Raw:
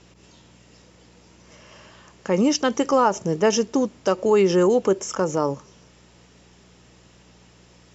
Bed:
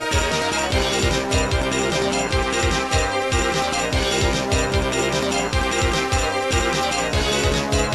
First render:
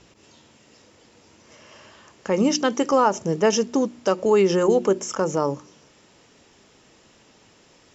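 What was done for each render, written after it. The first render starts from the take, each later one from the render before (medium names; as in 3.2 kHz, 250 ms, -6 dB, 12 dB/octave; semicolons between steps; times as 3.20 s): de-hum 60 Hz, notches 6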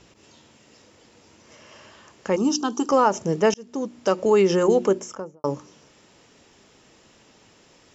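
2.36–2.89 s: static phaser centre 550 Hz, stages 6; 3.54–4.10 s: fade in; 4.85–5.44 s: studio fade out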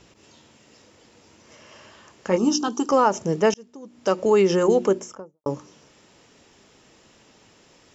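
2.28–2.68 s: doubling 17 ms -6 dB; 3.49–4.11 s: dip -14.5 dB, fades 0.29 s; 4.99–5.46 s: studio fade out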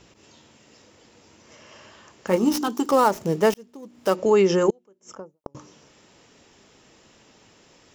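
2.27–4.16 s: dead-time distortion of 0.071 ms; 4.70–5.55 s: inverted gate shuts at -22 dBFS, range -37 dB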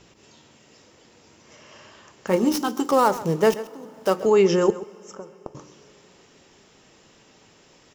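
delay 133 ms -16 dB; two-slope reverb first 0.25 s, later 4.1 s, from -20 dB, DRR 13.5 dB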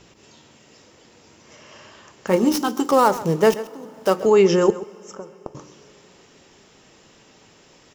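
trim +2.5 dB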